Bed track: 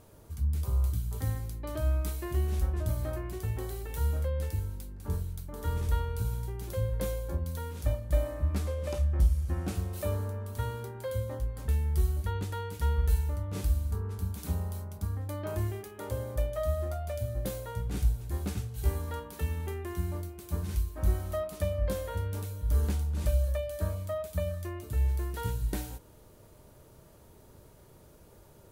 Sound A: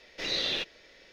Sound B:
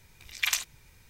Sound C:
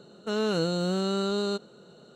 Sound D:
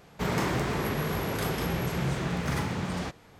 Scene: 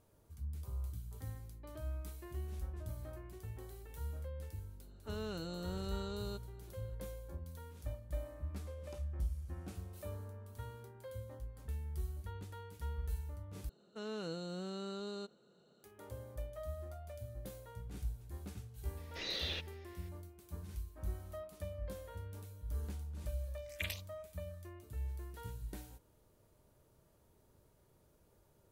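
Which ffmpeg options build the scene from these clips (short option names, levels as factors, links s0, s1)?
-filter_complex "[3:a]asplit=2[s0][s1];[0:a]volume=0.211[s2];[s0]bandreject=f=500:w=14[s3];[2:a]asplit=2[s4][s5];[s5]afreqshift=2.1[s6];[s4][s6]amix=inputs=2:normalize=1[s7];[s2]asplit=2[s8][s9];[s8]atrim=end=13.694[s10];[s1]atrim=end=2.15,asetpts=PTS-STARTPTS,volume=0.168[s11];[s9]atrim=start=15.836[s12];[s3]atrim=end=2.15,asetpts=PTS-STARTPTS,volume=0.168,afade=t=in:d=0.004:c=hsin,afade=t=out:st=2.146:d=0.004:c=hsin,adelay=4800[s13];[1:a]atrim=end=1.12,asetpts=PTS-STARTPTS,volume=0.335,afade=t=in:d=0.004:c=hsin,afade=t=out:st=1.116:d=0.004:c=hsin,adelay=18970[s14];[s7]atrim=end=1.09,asetpts=PTS-STARTPTS,volume=0.237,afade=t=in:d=0.004:c=hsin,afade=t=out:st=1.086:d=0.004:c=hsin,adelay=23370[s15];[s10][s11]acrossfade=d=0.004:c1=hsin:c2=hsin[s16];[s16][s12]acrossfade=d=0.004:c1=hsin:c2=hsin[s17];[s17][s13][s14][s15]amix=inputs=4:normalize=0"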